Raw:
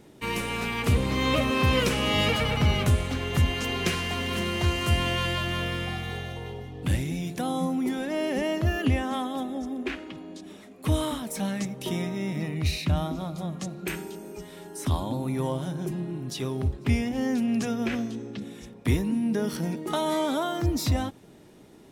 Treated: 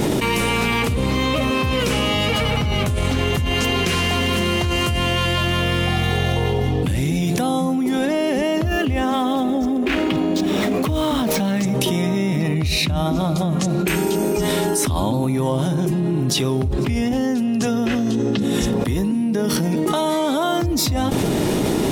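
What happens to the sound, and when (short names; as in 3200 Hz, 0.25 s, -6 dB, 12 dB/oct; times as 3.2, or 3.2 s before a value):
8.77–11.63 median filter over 5 samples
16.94–19.11 notch 2300 Hz, Q 8.5
whole clip: bell 1700 Hz -2.5 dB; fast leveller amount 100%; gain -2 dB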